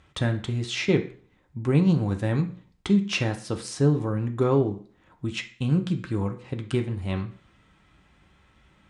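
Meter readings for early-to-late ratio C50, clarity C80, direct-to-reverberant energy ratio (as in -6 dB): 12.0 dB, 16.5 dB, 4.0 dB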